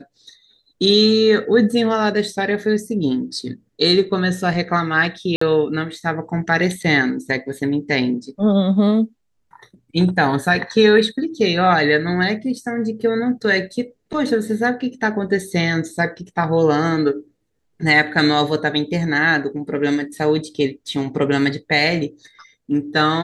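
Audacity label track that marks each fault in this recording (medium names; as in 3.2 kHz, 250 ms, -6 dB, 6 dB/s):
5.360000	5.410000	dropout 54 ms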